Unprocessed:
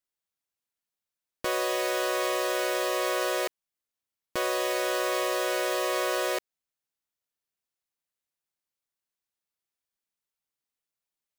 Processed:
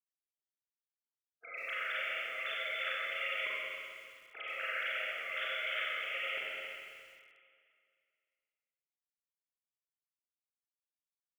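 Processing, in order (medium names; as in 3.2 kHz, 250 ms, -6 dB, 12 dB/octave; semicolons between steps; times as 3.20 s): formants replaced by sine waves; spectral gate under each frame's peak -20 dB weak; bass shelf 400 Hz -4 dB; Schroeder reverb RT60 2.2 s, combs from 30 ms, DRR -6.5 dB; bit-crushed delay 131 ms, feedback 55%, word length 9-bit, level -11 dB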